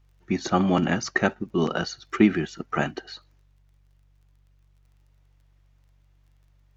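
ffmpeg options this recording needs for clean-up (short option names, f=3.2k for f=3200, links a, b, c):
-af "adeclick=t=4,bandreject=f=47.8:t=h:w=4,bandreject=f=95.6:t=h:w=4,bandreject=f=143.4:t=h:w=4"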